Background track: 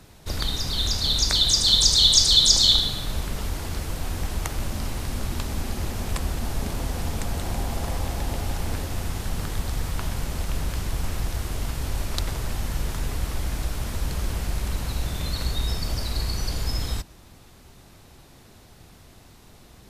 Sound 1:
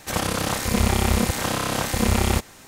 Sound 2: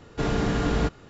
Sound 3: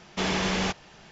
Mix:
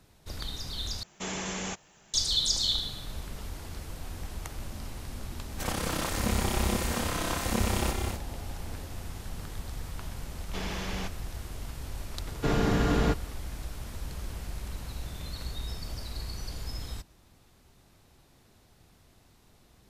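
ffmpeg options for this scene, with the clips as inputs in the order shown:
-filter_complex "[3:a]asplit=2[s0][s1];[0:a]volume=0.299[s2];[s0]aexciter=amount=8.2:drive=3.6:freq=6800[s3];[1:a]aecho=1:1:189.5|247.8:0.447|0.447[s4];[s2]asplit=2[s5][s6];[s5]atrim=end=1.034[s7];[s3]atrim=end=1.11,asetpts=PTS-STARTPTS,volume=0.355[s8];[s6]atrim=start=2.136[s9];[s4]atrim=end=2.67,asetpts=PTS-STARTPTS,volume=0.376,afade=t=in:d=0.004:c=hsin,afade=t=out:st=2.666:d=0.004:c=hsin,adelay=5520[s10];[s1]atrim=end=1.11,asetpts=PTS-STARTPTS,volume=0.316,afade=t=in:d=0.004:c=hsin,afade=t=out:st=1.106:d=0.004:c=hsin,adelay=10360[s11];[2:a]atrim=end=1.09,asetpts=PTS-STARTPTS,volume=0.891,afade=t=in:d=0.004:c=hsin,afade=t=out:st=1.086:d=0.004:c=hsin,adelay=12250[s12];[s7][s8]acrossfade=d=0.004:c1=hsin:c2=hsin[s13];[s13][s9]acrossfade=d=0.004:c1=hsin:c2=hsin[s14];[s14][s10][s11][s12]amix=inputs=4:normalize=0"

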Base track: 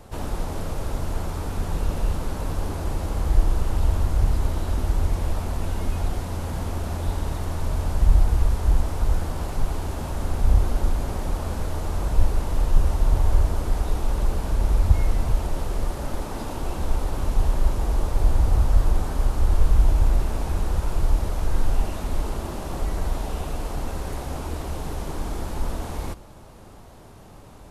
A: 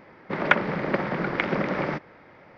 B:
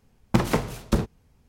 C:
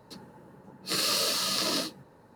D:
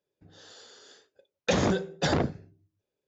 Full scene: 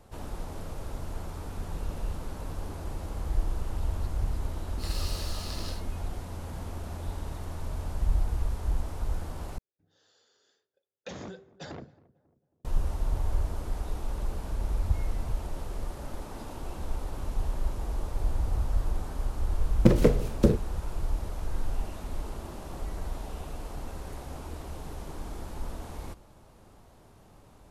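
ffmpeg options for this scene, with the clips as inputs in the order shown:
-filter_complex "[0:a]volume=0.335[s0];[4:a]asplit=2[s1][s2];[s2]adelay=272,lowpass=f=1000:p=1,volume=0.1,asplit=2[s3][s4];[s4]adelay=272,lowpass=f=1000:p=1,volume=0.48,asplit=2[s5][s6];[s6]adelay=272,lowpass=f=1000:p=1,volume=0.48,asplit=2[s7][s8];[s8]adelay=272,lowpass=f=1000:p=1,volume=0.48[s9];[s1][s3][s5][s7][s9]amix=inputs=5:normalize=0[s10];[2:a]lowshelf=f=650:t=q:w=3:g=7[s11];[s0]asplit=2[s12][s13];[s12]atrim=end=9.584[s14];[s10]atrim=end=3.07,asetpts=PTS-STARTPTS,volume=0.15[s15];[s13]atrim=start=12.646[s16];[3:a]atrim=end=2.35,asetpts=PTS-STARTPTS,volume=0.224,afade=t=in:d=0.004:c=hsin,afade=t=out:st=2.346:d=0.004:c=hsin,adelay=3920[s17];[s11]atrim=end=1.48,asetpts=PTS-STARTPTS,volume=0.473,afade=t=in:d=0.004:c=hsin,afade=t=out:st=1.476:d=0.004:c=hsin,adelay=19510[s18];[s14][s15]acrossfade=d=0.004:c1=hsin:c2=hsin[s19];[s19][s16]acrossfade=d=0.004:c1=hsin:c2=hsin[s20];[s20][s17][s18]amix=inputs=3:normalize=0"

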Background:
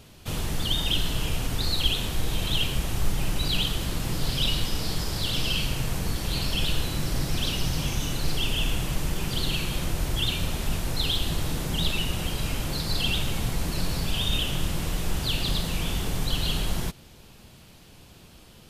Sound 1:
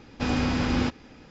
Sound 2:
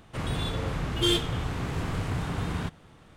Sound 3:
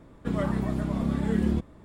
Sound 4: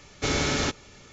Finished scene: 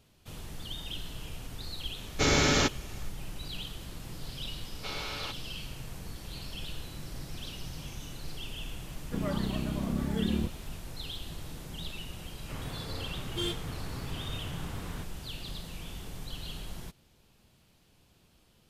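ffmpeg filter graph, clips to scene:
-filter_complex "[4:a]asplit=2[s0][s1];[0:a]volume=0.2[s2];[s0]dynaudnorm=f=130:g=3:m=1.68[s3];[s1]highpass=f=370:w=0.5412,highpass=f=370:w=1.3066,equalizer=f=390:t=q:w=4:g=-8,equalizer=f=610:t=q:w=4:g=-3,equalizer=f=1100:t=q:w=4:g=3,equalizer=f=1800:t=q:w=4:g=-7,equalizer=f=2800:t=q:w=4:g=4,equalizer=f=4200:t=q:w=4:g=3,lowpass=f=4900:w=0.5412,lowpass=f=4900:w=1.3066[s4];[3:a]aeval=exprs='val(0)*gte(abs(val(0)),0.00237)':c=same[s5];[2:a]highpass=46[s6];[s3]atrim=end=1.12,asetpts=PTS-STARTPTS,volume=0.668,afade=t=in:d=0.004:c=hsin,afade=t=out:st=1.116:d=0.004:c=hsin,adelay=1970[s7];[s4]atrim=end=1.12,asetpts=PTS-STARTPTS,volume=0.316,afade=t=in:d=0.004:c=hsin,afade=t=out:st=1.116:d=0.004:c=hsin,adelay=203301S[s8];[s5]atrim=end=1.84,asetpts=PTS-STARTPTS,volume=0.562,afade=t=in:d=0.004:c=hsin,afade=t=out:st=1.836:d=0.004:c=hsin,adelay=8870[s9];[s6]atrim=end=3.16,asetpts=PTS-STARTPTS,volume=0.335,afade=t=in:d=0.004:c=hsin,afade=t=out:st=3.156:d=0.004:c=hsin,adelay=12350[s10];[s2][s7][s8][s9][s10]amix=inputs=5:normalize=0"

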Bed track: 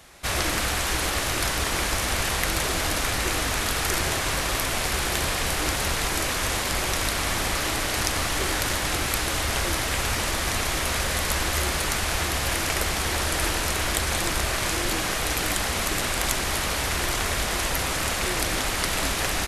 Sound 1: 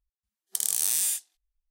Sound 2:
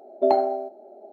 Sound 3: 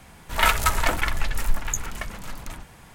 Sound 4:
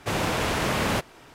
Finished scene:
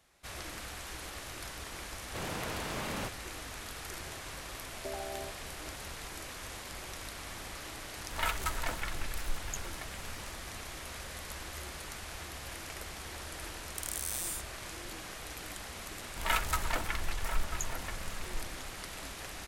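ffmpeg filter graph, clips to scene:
-filter_complex "[3:a]asplit=2[s0][s1];[0:a]volume=0.126[s2];[2:a]acompressor=threshold=0.0562:ratio=6:attack=3.2:release=140:knee=1:detection=peak[s3];[s1]asplit=2[s4][s5];[s5]adelay=991.3,volume=0.398,highshelf=f=4000:g=-22.3[s6];[s4][s6]amix=inputs=2:normalize=0[s7];[4:a]atrim=end=1.34,asetpts=PTS-STARTPTS,volume=0.224,afade=t=in:d=0.004:c=hsin,afade=t=out:st=1.336:d=0.004:c=hsin,adelay=2080[s8];[s3]atrim=end=1.12,asetpts=PTS-STARTPTS,volume=0.251,afade=t=in:d=0.004:c=hsin,afade=t=out:st=1.116:d=0.004:c=hsin,adelay=4630[s9];[s0]atrim=end=2.94,asetpts=PTS-STARTPTS,volume=0.211,afade=t=in:d=0.004:c=hsin,afade=t=out:st=2.936:d=0.004:c=hsin,adelay=7800[s10];[1:a]atrim=end=1.7,asetpts=PTS-STARTPTS,volume=0.251,afade=t=in:d=0.004:c=hsin,afade=t=out:st=1.696:d=0.004:c=hsin,adelay=13230[s11];[s7]atrim=end=2.94,asetpts=PTS-STARTPTS,volume=0.282,afade=t=in:d=0.004:c=hsin,afade=t=out:st=2.936:d=0.004:c=hsin,adelay=15870[s12];[s2][s8][s9][s10][s11][s12]amix=inputs=6:normalize=0"

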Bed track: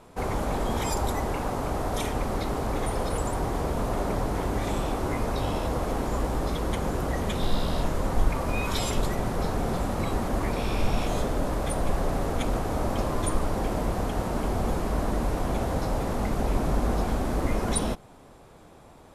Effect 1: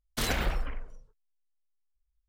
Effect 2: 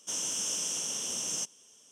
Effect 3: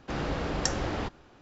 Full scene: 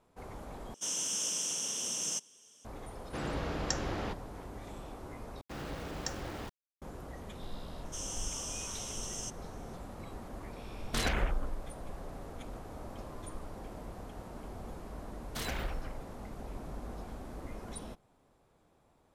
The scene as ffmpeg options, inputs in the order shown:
-filter_complex "[2:a]asplit=2[s0][s1];[3:a]asplit=2[s2][s3];[1:a]asplit=2[s4][s5];[0:a]volume=0.133[s6];[s3]aeval=exprs='val(0)*gte(abs(val(0)),0.0141)':c=same[s7];[s4]afwtdn=0.00891[s8];[s6]asplit=3[s9][s10][s11];[s9]atrim=end=0.744[s12];[s0]atrim=end=1.91,asetpts=PTS-STARTPTS,volume=0.841[s13];[s10]atrim=start=2.646:end=5.414[s14];[s7]atrim=end=1.41,asetpts=PTS-STARTPTS,volume=0.335[s15];[s11]atrim=start=6.816[s16];[s2]atrim=end=1.41,asetpts=PTS-STARTPTS,volume=0.562,afade=t=in:d=0.004:c=hsin,afade=t=out:st=1.406:d=0.004:c=hsin,adelay=134505S[s17];[s1]atrim=end=1.91,asetpts=PTS-STARTPTS,volume=0.398,afade=t=in:d=0.004:c=hsin,afade=t=out:st=1.906:d=0.004:c=hsin,adelay=7850[s18];[s8]atrim=end=2.28,asetpts=PTS-STARTPTS,volume=0.794,afade=t=in:d=0.004:c=hsin,afade=t=out:st=2.276:d=0.004:c=hsin,adelay=10760[s19];[s5]atrim=end=2.28,asetpts=PTS-STARTPTS,volume=0.398,afade=t=in:d=0.004:c=hsin,afade=t=out:st=2.276:d=0.004:c=hsin,adelay=15180[s20];[s12][s13]acrossfade=d=0.004:c1=hsin:c2=hsin[s21];[s21][s14]acrossfade=d=0.004:c1=hsin:c2=hsin[s22];[s22][s15]acrossfade=d=0.004:c1=hsin:c2=hsin[s23];[s23][s16]acrossfade=d=0.004:c1=hsin:c2=hsin[s24];[s24][s17][s18][s19][s20]amix=inputs=5:normalize=0"

